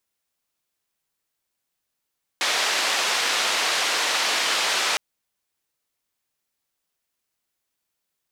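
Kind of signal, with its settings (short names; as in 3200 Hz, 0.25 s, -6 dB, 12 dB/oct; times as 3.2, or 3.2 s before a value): noise band 530–4600 Hz, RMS -23 dBFS 2.56 s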